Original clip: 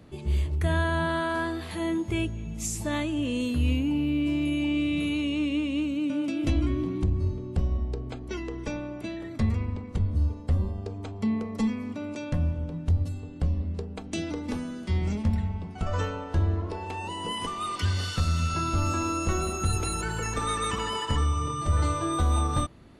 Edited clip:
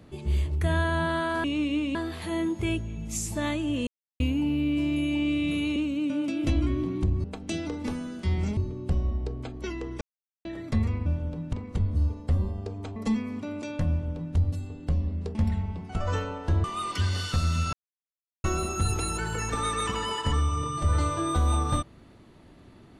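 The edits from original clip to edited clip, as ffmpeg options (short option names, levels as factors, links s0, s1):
-filter_complex "[0:a]asplit=17[s0][s1][s2][s3][s4][s5][s6][s7][s8][s9][s10][s11][s12][s13][s14][s15][s16];[s0]atrim=end=1.442[s17];[s1]atrim=start=5.248:end=5.762[s18];[s2]atrim=start=1.438:end=3.36,asetpts=PTS-STARTPTS,afade=t=out:st=1.918:d=0.004:c=hsin[s19];[s3]atrim=start=3.36:end=3.69,asetpts=PTS-STARTPTS,volume=0[s20];[s4]atrim=start=3.69:end=5.252,asetpts=PTS-STARTPTS,afade=t=in:d=0.004:c=hsin[s21];[s5]atrim=start=5.758:end=7.242[s22];[s6]atrim=start=13.878:end=15.212[s23];[s7]atrim=start=7.238:end=8.68,asetpts=PTS-STARTPTS,afade=t=out:st=1.438:d=0.004:c=hsin[s24];[s8]atrim=start=8.68:end=9.12,asetpts=PTS-STARTPTS,volume=0[s25];[s9]atrim=start=9.12:end=9.732,asetpts=PTS-STARTPTS,afade=t=in:d=0.004:c=hsin[s26];[s10]atrim=start=12.418:end=12.892[s27];[s11]atrim=start=9.728:end=11.162[s28];[s12]atrim=start=11.488:end=13.882[s29];[s13]atrim=start=15.208:end=16.502[s30];[s14]atrim=start=17.478:end=18.57,asetpts=PTS-STARTPTS,afade=t=out:st=1.088:d=0.004:c=hsin[s31];[s15]atrim=start=18.57:end=19.28,asetpts=PTS-STARTPTS,volume=0[s32];[s16]atrim=start=19.28,asetpts=PTS-STARTPTS,afade=t=in:d=0.004:c=hsin[s33];[s17][s18]acrossfade=d=0.004:c1=hsin:c2=hsin[s34];[s19][s20][s21]concat=n=3:v=0:a=1[s35];[s34][s35]acrossfade=d=0.004:c1=hsin:c2=hsin[s36];[s36][s22]acrossfade=d=0.004:c1=hsin:c2=hsin[s37];[s37][s23]acrossfade=d=0.004:c1=hsin:c2=hsin[s38];[s24][s25][s26]concat=n=3:v=0:a=1[s39];[s38][s39]acrossfade=d=0.004:c1=hsin:c2=hsin[s40];[s40][s27]acrossfade=d=0.004:c1=hsin:c2=hsin[s41];[s41][s28]acrossfade=d=0.004:c1=hsin:c2=hsin[s42];[s42][s29]acrossfade=d=0.004:c1=hsin:c2=hsin[s43];[s43][s30]acrossfade=d=0.004:c1=hsin:c2=hsin[s44];[s31][s32][s33]concat=n=3:v=0:a=1[s45];[s44][s45]acrossfade=d=0.004:c1=hsin:c2=hsin"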